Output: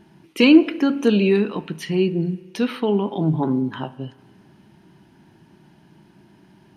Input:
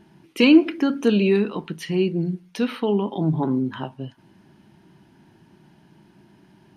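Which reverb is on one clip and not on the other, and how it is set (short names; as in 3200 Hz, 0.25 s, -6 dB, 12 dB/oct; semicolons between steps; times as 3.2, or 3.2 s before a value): spring tank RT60 1.7 s, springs 32 ms, chirp 45 ms, DRR 18 dB; gain +1.5 dB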